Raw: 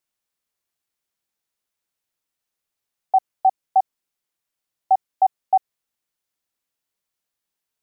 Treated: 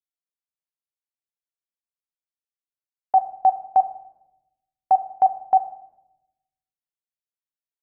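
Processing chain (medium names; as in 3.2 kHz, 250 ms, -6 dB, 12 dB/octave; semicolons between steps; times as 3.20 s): gate with hold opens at -18 dBFS; simulated room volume 310 m³, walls mixed, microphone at 0.33 m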